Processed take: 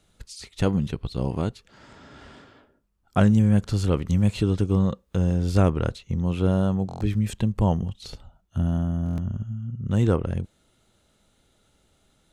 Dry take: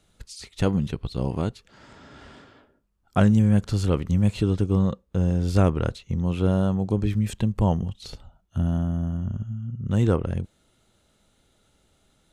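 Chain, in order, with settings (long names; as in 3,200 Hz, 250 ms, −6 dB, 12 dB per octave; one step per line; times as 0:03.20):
buffer that repeats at 0:06.87/0:09.04, samples 1,024, times 5
0:04.08–0:05.35: one half of a high-frequency compander encoder only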